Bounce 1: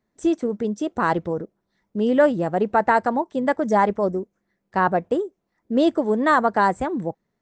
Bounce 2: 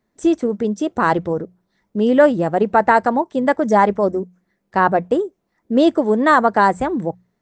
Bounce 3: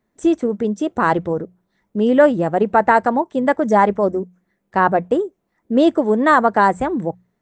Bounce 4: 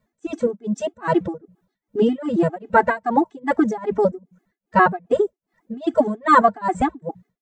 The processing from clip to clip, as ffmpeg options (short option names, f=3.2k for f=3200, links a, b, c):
-af "bandreject=f=60:t=h:w=6,bandreject=f=120:t=h:w=6,bandreject=f=180:t=h:w=6,volume=4.5dB"
-af "equalizer=f=4.9k:t=o:w=0.67:g=-5"
-af "tremolo=f=2.5:d=0.97,afftfilt=real='re*gt(sin(2*PI*7.4*pts/sr)*(1-2*mod(floor(b*sr/1024/220),2)),0)':imag='im*gt(sin(2*PI*7.4*pts/sr)*(1-2*mod(floor(b*sr/1024/220),2)),0)':win_size=1024:overlap=0.75,volume=5.5dB"